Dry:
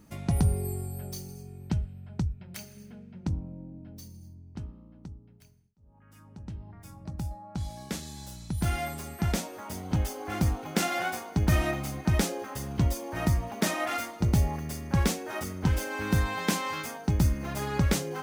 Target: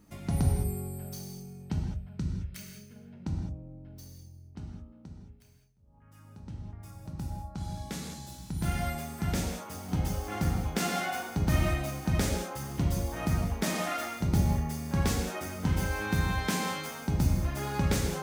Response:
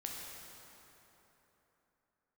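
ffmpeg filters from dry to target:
-filter_complex "[0:a]asettb=1/sr,asplit=3[s0][s1][s2];[s0]atrim=end=2.134[s3];[s1]atrim=start=2.13:end=2.96,asetpts=PTS-STARTPTS,afade=t=in:d=0.004:c=qsin,afade=t=out:st=0.826:d=0.004:c=qsin,equalizer=f=780:t=o:w=0.51:g=-14[s4];[s2]atrim=start=2.956[s5];[s3][s4]acrossfade=d=0.004:c1=hsin:c2=qsin[s6];[s6][s5]acrossfade=d=0.004:c1=qsin:c2=hsin[s7];[1:a]atrim=start_sample=2205,afade=t=out:st=0.27:d=0.01,atrim=end_sample=12348[s8];[s7][s8]afir=irnorm=-1:irlink=0"

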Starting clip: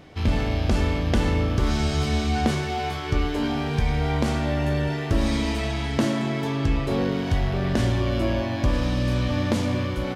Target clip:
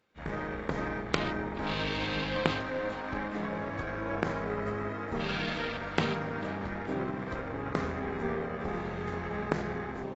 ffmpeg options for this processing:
-filter_complex "[0:a]highpass=f=700:p=1,asplit=2[s0][s1];[s1]aeval=exprs='sgn(val(0))*max(abs(val(0))-0.00596,0)':c=same,volume=0.398[s2];[s0][s2]amix=inputs=2:normalize=0,afwtdn=0.02,asplit=6[s3][s4][s5][s6][s7][s8];[s4]adelay=428,afreqshift=67,volume=0.158[s9];[s5]adelay=856,afreqshift=134,volume=0.0822[s10];[s6]adelay=1284,afreqshift=201,volume=0.0427[s11];[s7]adelay=1712,afreqshift=268,volume=0.0224[s12];[s8]adelay=2140,afreqshift=335,volume=0.0116[s13];[s3][s9][s10][s11][s12][s13]amix=inputs=6:normalize=0,aeval=exprs='0.501*(cos(1*acos(clip(val(0)/0.501,-1,1)))-cos(1*PI/2))+0.0794*(cos(3*acos(clip(val(0)/0.501,-1,1)))-cos(3*PI/2))+0.00316*(cos(6*acos(clip(val(0)/0.501,-1,1)))-cos(6*PI/2))+0.00708*(cos(7*acos(clip(val(0)/0.501,-1,1)))-cos(7*PI/2))+0.00631*(cos(8*acos(clip(val(0)/0.501,-1,1)))-cos(8*PI/2))':c=same,asetrate=31183,aresample=44100,atempo=1.41421,aemphasis=mode=production:type=50kf,volume=1.26" -ar 22050 -c:a aac -b:a 24k

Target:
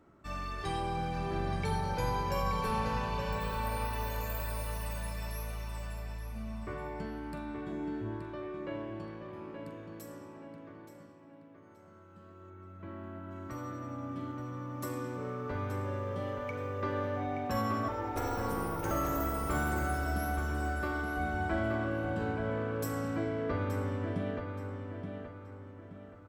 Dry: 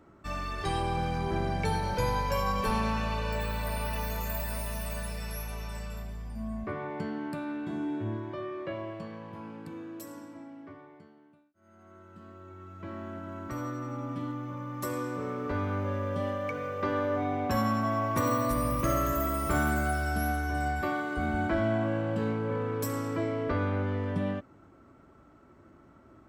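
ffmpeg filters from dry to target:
-filter_complex "[0:a]asettb=1/sr,asplit=3[s0][s1][s2];[s0]atrim=end=12.504[s3];[s1]atrim=start=12.5:end=13.31,asetpts=PTS-STARTPTS,afade=t=in:d=0.004:c=qsin,afade=t=out:st=0.806:d=0.004:c=qsin,equalizer=f=6300:t=o:w=1.1:g=-13[s4];[s2]atrim=start=13.306[s5];[s3][s4]acrossfade=d=0.004:c1=hsin:c2=qsin[s6];[s6][s5]acrossfade=d=0.004:c1=qsin:c2=hsin,asettb=1/sr,asplit=3[s7][s8][s9];[s7]atrim=end=17.884[s10];[s8]atrim=start=17.88:end=18.91,asetpts=PTS-STARTPTS,afade=t=in:d=0.004:c=qsin,afade=t=out:st=1.026:d=0.004:c=qsin,aeval=exprs='val(0)*sin(2*PI*220*n/s)':c=same[s11];[s9]atrim=start=18.906[s12];[s10][s11]acrossfade=d=0.004:c1=hsin:c2=qsin[s13];[s13][s12]acrossfade=d=0.004:c1=qsin:c2=hsin,asplit=2[s14][s15];[s15]adelay=43,volume=0.251[s16];[s14][s16]amix=inputs=2:normalize=0,asplit=2[s17][s18];[s18]adelay=875,lowpass=f=4700:p=1,volume=0.501,asplit=2[s19][s20];[s20]adelay=875,lowpass=f=4700:p=1,volume=0.4,asplit=2[s21][s22];[s22]adelay=875,lowpass=f=4700:p=1,volume=0.4,asplit=2[s23][s24];[s24]adelay=875,lowpass=f=4700:p=1,volume=0.4,asplit=2[s25][s26];[s26]adelay=875,lowpass=f=4700:p=1,volume=0.4[s27];[s17][s19][s21][s23][s25][s27]amix=inputs=6:normalize=0,volume=0.562"

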